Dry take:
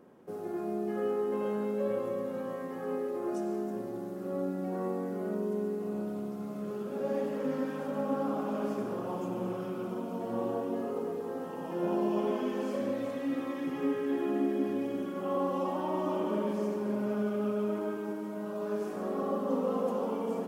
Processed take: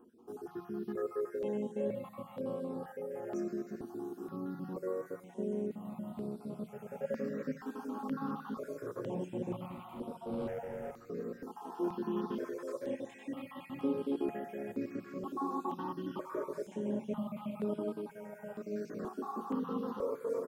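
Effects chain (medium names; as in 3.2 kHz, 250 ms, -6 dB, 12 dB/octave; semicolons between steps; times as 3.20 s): random holes in the spectrogram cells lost 34%; 9.66–10.93 s: hard clipper -34.5 dBFS, distortion -20 dB; 12.54–13.43 s: bass shelf 270 Hz -9.5 dB; delay 520 ms -18 dB; on a send at -15 dB: reverberation RT60 0.30 s, pre-delay 3 ms; on the sum: stepped phaser 2.1 Hz 560–6400 Hz; trim -1 dB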